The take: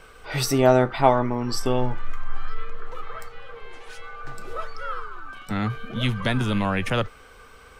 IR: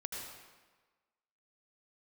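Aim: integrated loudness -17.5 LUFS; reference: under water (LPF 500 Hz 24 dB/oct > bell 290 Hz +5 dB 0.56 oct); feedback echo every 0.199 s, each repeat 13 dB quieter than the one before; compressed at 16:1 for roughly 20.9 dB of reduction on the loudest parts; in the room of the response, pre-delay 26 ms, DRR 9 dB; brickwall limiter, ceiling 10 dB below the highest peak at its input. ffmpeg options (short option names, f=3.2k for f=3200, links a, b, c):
-filter_complex "[0:a]acompressor=threshold=-32dB:ratio=16,alimiter=level_in=8dB:limit=-24dB:level=0:latency=1,volume=-8dB,aecho=1:1:199|398|597:0.224|0.0493|0.0108,asplit=2[a][b];[1:a]atrim=start_sample=2205,adelay=26[c];[b][c]afir=irnorm=-1:irlink=0,volume=-9dB[d];[a][d]amix=inputs=2:normalize=0,lowpass=f=500:w=0.5412,lowpass=f=500:w=1.3066,equalizer=f=290:t=o:w=0.56:g=5,volume=27dB"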